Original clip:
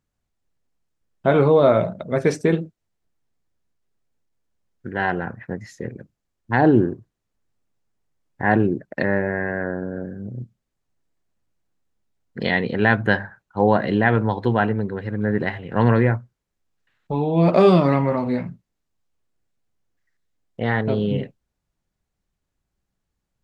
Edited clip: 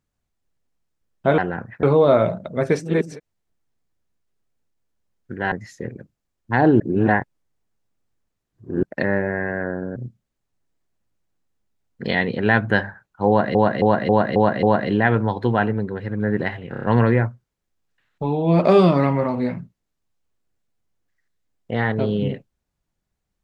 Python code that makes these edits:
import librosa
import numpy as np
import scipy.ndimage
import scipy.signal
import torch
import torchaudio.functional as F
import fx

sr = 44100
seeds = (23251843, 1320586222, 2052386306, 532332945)

y = fx.edit(x, sr, fx.reverse_span(start_s=2.38, length_s=0.25, crossfade_s=0.24),
    fx.move(start_s=5.07, length_s=0.45, to_s=1.38),
    fx.reverse_span(start_s=6.8, length_s=2.03),
    fx.cut(start_s=9.96, length_s=0.36),
    fx.repeat(start_s=13.64, length_s=0.27, count=6),
    fx.stutter(start_s=15.72, slice_s=0.03, count=5), tone=tone)